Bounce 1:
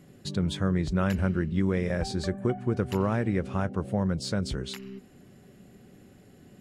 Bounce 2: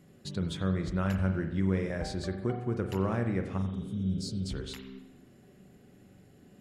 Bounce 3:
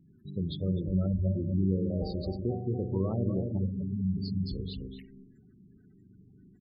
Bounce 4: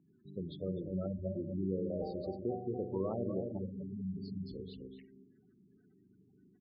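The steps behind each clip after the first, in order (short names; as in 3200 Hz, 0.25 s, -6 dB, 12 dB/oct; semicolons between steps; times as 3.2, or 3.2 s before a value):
spectral repair 3.61–4.41, 230–3800 Hz after; on a send at -6 dB: reverb RT60 0.90 s, pre-delay 42 ms; on the sum: gain -5 dB
echo 0.251 s -5.5 dB; envelope phaser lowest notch 520 Hz, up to 1800 Hz, full sweep at -31 dBFS; spectral gate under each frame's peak -20 dB strong
band-pass 710 Hz, Q 0.73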